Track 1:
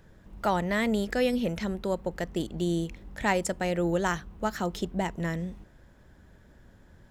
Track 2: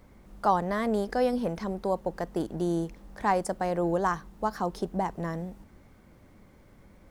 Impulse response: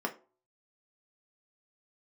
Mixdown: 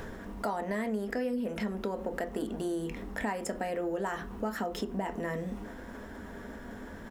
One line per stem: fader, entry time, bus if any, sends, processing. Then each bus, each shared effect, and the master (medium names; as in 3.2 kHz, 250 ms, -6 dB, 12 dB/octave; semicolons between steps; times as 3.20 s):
-1.5 dB, 0.00 s, send -9 dB, level flattener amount 50%; auto duck -7 dB, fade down 0.20 s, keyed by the second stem
+1.5 dB, 0.4 ms, no send, high-pass 1.2 kHz 24 dB/octave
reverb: on, RT60 0.40 s, pre-delay 3 ms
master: compression 5:1, threshold -30 dBFS, peak gain reduction 11 dB